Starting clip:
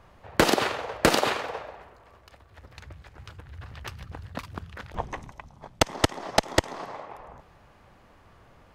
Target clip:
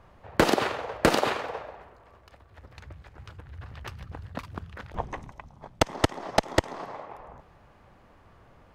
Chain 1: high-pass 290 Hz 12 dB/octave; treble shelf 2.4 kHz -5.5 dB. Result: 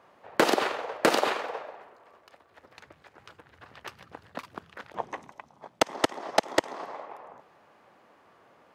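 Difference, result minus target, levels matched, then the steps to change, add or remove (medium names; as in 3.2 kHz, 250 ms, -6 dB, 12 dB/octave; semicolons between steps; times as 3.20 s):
250 Hz band -3.5 dB
remove: high-pass 290 Hz 12 dB/octave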